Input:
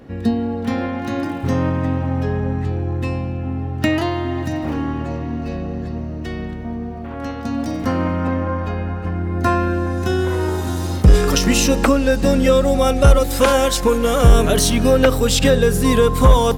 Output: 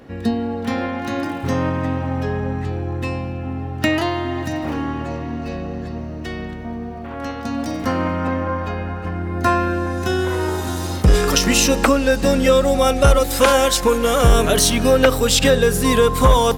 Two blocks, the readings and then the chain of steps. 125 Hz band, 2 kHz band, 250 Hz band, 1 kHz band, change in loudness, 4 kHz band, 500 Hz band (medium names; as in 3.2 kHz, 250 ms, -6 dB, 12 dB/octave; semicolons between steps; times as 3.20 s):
-3.0 dB, +2.0 dB, -2.0 dB, +1.5 dB, 0.0 dB, +2.5 dB, 0.0 dB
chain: bass shelf 410 Hz -6 dB; trim +2.5 dB